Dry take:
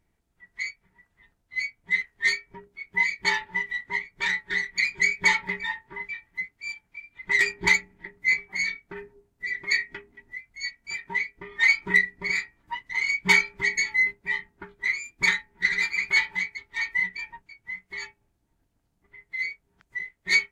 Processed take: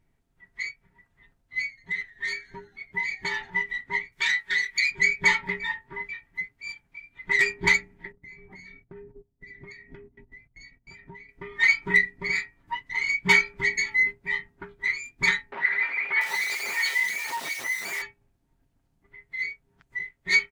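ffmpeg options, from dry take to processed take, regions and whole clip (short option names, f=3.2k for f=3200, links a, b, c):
-filter_complex "[0:a]asettb=1/sr,asplit=3[a][b][c];[a]atrim=end=1.604[d];[b]atrim=start=1.6:end=3.5,asetpts=PTS-STARTPTS,afade=t=in:d=0.004:c=qsin,afade=t=out:st=1.896:d=0.004:c=qsin,acompressor=threshold=-25dB:ratio=5:attack=3.2:release=140:knee=1:detection=peak,asplit=6[e][f][g][h][i][j];[f]adelay=87,afreqshift=-87,volume=-23dB[k];[g]adelay=174,afreqshift=-174,volume=-26.9dB[l];[h]adelay=261,afreqshift=-261,volume=-30.8dB[m];[i]adelay=348,afreqshift=-348,volume=-34.6dB[n];[j]adelay=435,afreqshift=-435,volume=-38.5dB[o];[e][k][l][m][n][o]amix=inputs=6:normalize=0,atrim=end_sample=83790[p];[c]atrim=start=3.496[q];[d][p]acrossfade=d=0.004:c1=hsin:c2=qsin[r];[r][q]acrossfade=d=0.004:c1=qsin:c2=hsin,asettb=1/sr,asplit=3[s][t][u];[s]atrim=end=4.124[v];[t]atrim=start=4.12:end=4.91,asetpts=PTS-STARTPTS,afade=t=in:d=0.004:c=qsin,afade=t=out:st=0.786:d=0.004:c=qsin,tiltshelf=f=1.2k:g=-10,acompressor=threshold=-22dB:ratio=2:attack=3.2:release=140:knee=1:detection=peak[w];[u]atrim=start=4.906[x];[v][w]acrossfade=d=0.004:c1=hsin:c2=qsin[y];[y][x]acrossfade=d=0.004:c1=qsin:c2=hsin,asettb=1/sr,asplit=3[z][aa][ab];[z]atrim=end=8.124[ac];[aa]atrim=start=8.12:end=11.29,asetpts=PTS-STARTPTS,afade=t=in:d=0.004:c=qsin,afade=t=out:st=3.166:d=0.004:c=qsin,agate=range=-16dB:threshold=-57dB:ratio=16:release=100:detection=peak,tiltshelf=f=800:g=8.5,acompressor=threshold=-44dB:ratio=6:attack=3.2:release=140:knee=1:detection=peak[ad];[ab]atrim=start=11.286[ae];[ac][ad]acrossfade=d=0.004:c1=hsin:c2=qsin[af];[af][ae]acrossfade=d=0.004:c1=qsin:c2=hsin,asettb=1/sr,asplit=3[ag][ah][ai];[ag]atrim=end=15.524[aj];[ah]atrim=start=15.52:end=18.02,asetpts=PTS-STARTPTS,afade=t=in:d=0.004:c=qsin,afade=t=out:st=2.496:d=0.004:c=qsin,aeval=exprs='val(0)+0.5*0.0501*sgn(val(0))':c=same,highpass=540,acrossover=split=2600[ak][al];[al]adelay=690[am];[ak][am]amix=inputs=2:normalize=0,atrim=end_sample=110250[an];[ai]atrim=start=18.016[ao];[aj][an]acrossfade=d=0.004:c1=hsin:c2=qsin[ap];[ap][ao]acrossfade=d=0.004:c1=qsin:c2=hsin,bass=f=250:g=4,treble=f=4k:g=-3,bandreject=f=60:t=h:w=6,bandreject=f=120:t=h:w=6,aecho=1:1:7.5:0.32"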